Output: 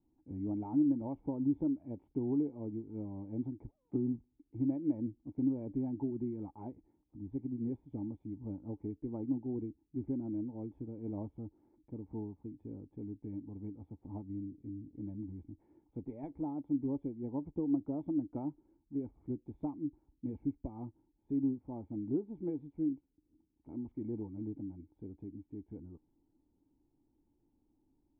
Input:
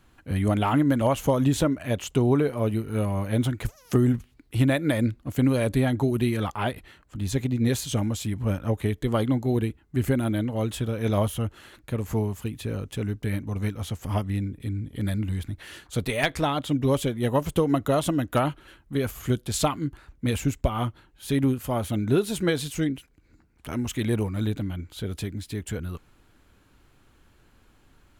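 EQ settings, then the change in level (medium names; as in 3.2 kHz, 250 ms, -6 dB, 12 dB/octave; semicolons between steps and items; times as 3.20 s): cascade formant filter u; -5.5 dB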